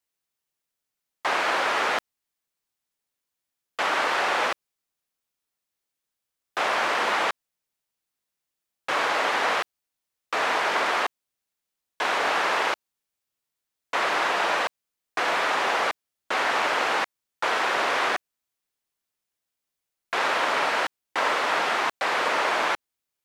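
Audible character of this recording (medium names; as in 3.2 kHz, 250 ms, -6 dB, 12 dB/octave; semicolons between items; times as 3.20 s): noise floor -85 dBFS; spectral tilt -1.0 dB/octave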